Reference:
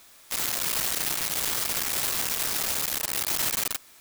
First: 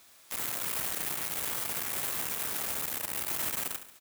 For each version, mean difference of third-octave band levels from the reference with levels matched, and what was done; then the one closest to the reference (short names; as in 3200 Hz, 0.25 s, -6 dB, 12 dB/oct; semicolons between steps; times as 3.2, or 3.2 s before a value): 2.0 dB: feedback echo 70 ms, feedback 47%, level -11 dB; dynamic EQ 4900 Hz, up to -7 dB, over -46 dBFS, Q 1; HPF 54 Hz; gain -5 dB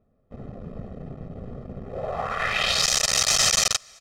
15.5 dB: crossover distortion -59.5 dBFS; comb 1.6 ms, depth 91%; low-pass sweep 290 Hz -> 6000 Hz, 1.81–2.87; gain +4.5 dB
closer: first